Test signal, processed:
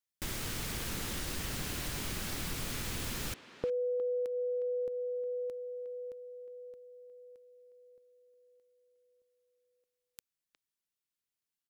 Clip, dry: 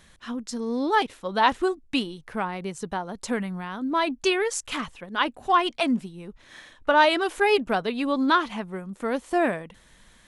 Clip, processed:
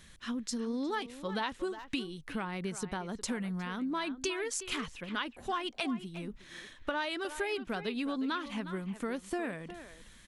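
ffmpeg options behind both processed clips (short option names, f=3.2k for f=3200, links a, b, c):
-filter_complex "[0:a]equalizer=f=750:w=0.88:g=-7.5,acompressor=threshold=-32dB:ratio=6,asplit=2[a][b];[b]adelay=360,highpass=300,lowpass=3.4k,asoftclip=type=hard:threshold=-27dB,volume=-11dB[c];[a][c]amix=inputs=2:normalize=0"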